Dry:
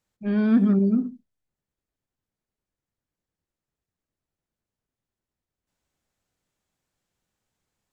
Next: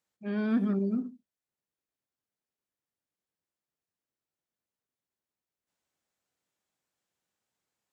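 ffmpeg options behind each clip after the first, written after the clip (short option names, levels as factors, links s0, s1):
-af "highpass=f=310:p=1,volume=0.631"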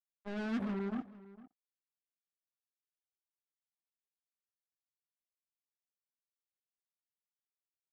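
-filter_complex "[0:a]acrusher=bits=4:mix=0:aa=0.5,asplit=2[s0][s1];[s1]adelay=454.8,volume=0.126,highshelf=f=4000:g=-10.2[s2];[s0][s2]amix=inputs=2:normalize=0,volume=0.355"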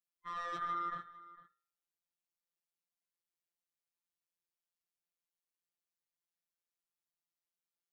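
-af "afftfilt=real='real(if(lt(b,960),b+48*(1-2*mod(floor(b/48),2)),b),0)':imag='imag(if(lt(b,960),b+48*(1-2*mod(floor(b/48),2)),b),0)':win_size=2048:overlap=0.75,afftfilt=real='hypot(re,im)*cos(PI*b)':imag='0':win_size=1024:overlap=0.75,bandreject=f=124.7:t=h:w=4,bandreject=f=249.4:t=h:w=4,bandreject=f=374.1:t=h:w=4,bandreject=f=498.8:t=h:w=4,bandreject=f=623.5:t=h:w=4,bandreject=f=748.2:t=h:w=4,bandreject=f=872.9:t=h:w=4,bandreject=f=997.6:t=h:w=4,bandreject=f=1122.3:t=h:w=4,bandreject=f=1247:t=h:w=4,bandreject=f=1371.7:t=h:w=4,bandreject=f=1496.4:t=h:w=4,bandreject=f=1621.1:t=h:w=4,bandreject=f=1745.8:t=h:w=4,bandreject=f=1870.5:t=h:w=4,bandreject=f=1995.2:t=h:w=4,bandreject=f=2119.9:t=h:w=4,bandreject=f=2244.6:t=h:w=4,bandreject=f=2369.3:t=h:w=4,bandreject=f=2494:t=h:w=4,bandreject=f=2618.7:t=h:w=4,bandreject=f=2743.4:t=h:w=4,bandreject=f=2868.1:t=h:w=4,bandreject=f=2992.8:t=h:w=4,bandreject=f=3117.5:t=h:w=4,bandreject=f=3242.2:t=h:w=4,bandreject=f=3366.9:t=h:w=4,bandreject=f=3491.6:t=h:w=4,bandreject=f=3616.3:t=h:w=4,bandreject=f=3741:t=h:w=4,bandreject=f=3865.7:t=h:w=4,bandreject=f=3990.4:t=h:w=4,bandreject=f=4115.1:t=h:w=4,volume=1.26"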